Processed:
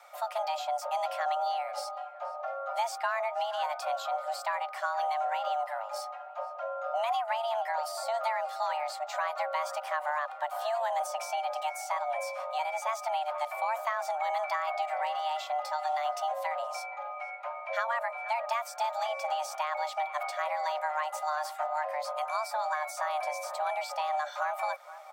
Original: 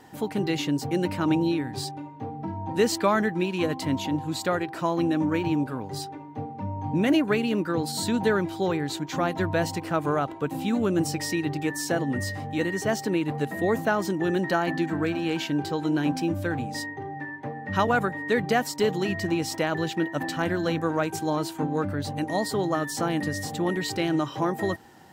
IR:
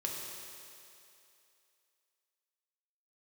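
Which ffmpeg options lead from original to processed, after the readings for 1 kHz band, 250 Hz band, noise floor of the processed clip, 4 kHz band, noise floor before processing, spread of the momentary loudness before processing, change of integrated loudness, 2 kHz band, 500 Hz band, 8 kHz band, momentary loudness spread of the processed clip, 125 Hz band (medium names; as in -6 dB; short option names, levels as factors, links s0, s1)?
+1.5 dB, under -40 dB, -43 dBFS, -7.5 dB, -40 dBFS, 9 LU, -6.0 dB, -6.0 dB, -7.0 dB, -8.5 dB, 6 LU, under -40 dB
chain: -filter_complex "[0:a]afreqshift=450,asplit=2[s0][s1];[s1]adelay=472,lowpass=f=1300:p=1,volume=0.15,asplit=2[s2][s3];[s3]adelay=472,lowpass=f=1300:p=1,volume=0.46,asplit=2[s4][s5];[s5]adelay=472,lowpass=f=1300:p=1,volume=0.46,asplit=2[s6][s7];[s7]adelay=472,lowpass=f=1300:p=1,volume=0.46[s8];[s0][s2][s4][s6][s8]amix=inputs=5:normalize=0,acrossover=split=510|1600[s9][s10][s11];[s9]acompressor=threshold=0.00891:ratio=4[s12];[s10]acompressor=threshold=0.0501:ratio=4[s13];[s11]acompressor=threshold=0.0126:ratio=4[s14];[s12][s13][s14]amix=inputs=3:normalize=0,volume=0.668"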